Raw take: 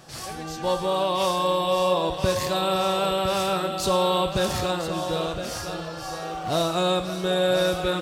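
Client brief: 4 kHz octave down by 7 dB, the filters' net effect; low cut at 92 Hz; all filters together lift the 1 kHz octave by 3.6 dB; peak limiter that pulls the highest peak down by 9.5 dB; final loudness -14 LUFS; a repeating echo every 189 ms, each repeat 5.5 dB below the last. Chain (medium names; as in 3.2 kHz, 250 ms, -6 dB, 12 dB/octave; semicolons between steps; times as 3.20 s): high-pass 92 Hz; peaking EQ 1 kHz +5 dB; peaking EQ 4 kHz -8.5 dB; peak limiter -19.5 dBFS; feedback delay 189 ms, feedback 53%, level -5.5 dB; trim +12.5 dB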